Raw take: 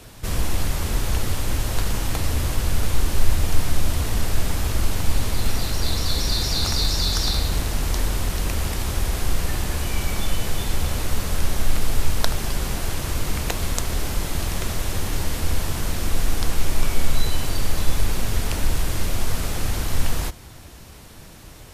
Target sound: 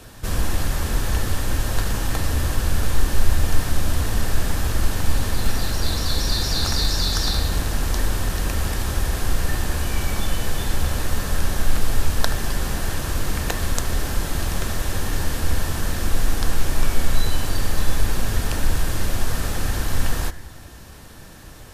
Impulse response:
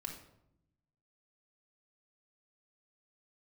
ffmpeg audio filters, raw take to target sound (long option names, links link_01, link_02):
-filter_complex "[0:a]asplit=2[link_01][link_02];[link_02]lowpass=frequency=1800:width_type=q:width=11[link_03];[1:a]atrim=start_sample=2205,asetrate=33516,aresample=44100[link_04];[link_03][link_04]afir=irnorm=-1:irlink=0,volume=-15.5dB[link_05];[link_01][link_05]amix=inputs=2:normalize=0"